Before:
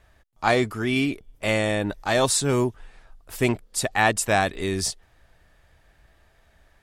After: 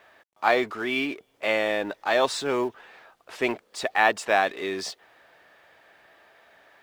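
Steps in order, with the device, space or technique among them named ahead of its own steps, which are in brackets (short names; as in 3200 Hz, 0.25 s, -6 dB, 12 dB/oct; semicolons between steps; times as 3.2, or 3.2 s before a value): phone line with mismatched companding (BPF 400–3600 Hz; G.711 law mismatch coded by mu)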